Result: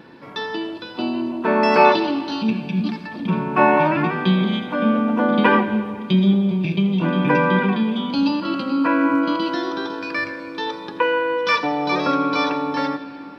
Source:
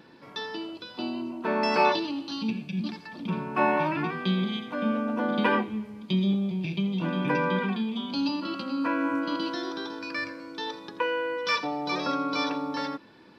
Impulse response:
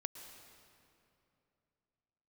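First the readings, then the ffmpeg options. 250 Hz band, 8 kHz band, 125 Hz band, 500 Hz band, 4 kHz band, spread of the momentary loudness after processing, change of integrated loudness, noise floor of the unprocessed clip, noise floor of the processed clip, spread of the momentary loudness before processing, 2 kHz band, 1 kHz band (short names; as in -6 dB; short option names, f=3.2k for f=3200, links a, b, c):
+9.0 dB, n/a, +9.0 dB, +9.0 dB, +5.0 dB, 11 LU, +9.0 dB, -49 dBFS, -36 dBFS, 11 LU, +8.5 dB, +9.0 dB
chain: -filter_complex "[0:a]asplit=2[a][b];[1:a]atrim=start_sample=2205,lowpass=3.7k[c];[b][c]afir=irnorm=-1:irlink=0,volume=1.5dB[d];[a][d]amix=inputs=2:normalize=0,volume=3.5dB"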